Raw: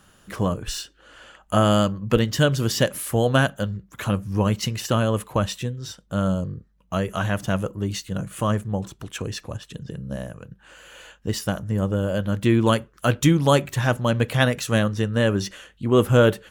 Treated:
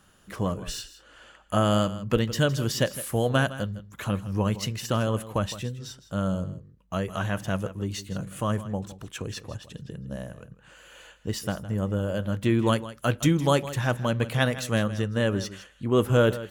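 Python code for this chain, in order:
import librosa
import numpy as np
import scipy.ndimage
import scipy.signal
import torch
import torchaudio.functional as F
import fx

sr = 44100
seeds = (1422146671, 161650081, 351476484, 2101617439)

y = x + 10.0 ** (-15.0 / 20.0) * np.pad(x, (int(161 * sr / 1000.0), 0))[:len(x)]
y = F.gain(torch.from_numpy(y), -4.5).numpy()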